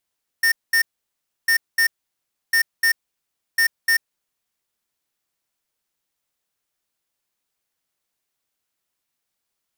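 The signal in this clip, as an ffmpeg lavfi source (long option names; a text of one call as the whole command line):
ffmpeg -f lavfi -i "aevalsrc='0.15*(2*lt(mod(1820*t,1),0.5)-1)*clip(min(mod(mod(t,1.05),0.3),0.09-mod(mod(t,1.05),0.3))/0.005,0,1)*lt(mod(t,1.05),0.6)':duration=4.2:sample_rate=44100" out.wav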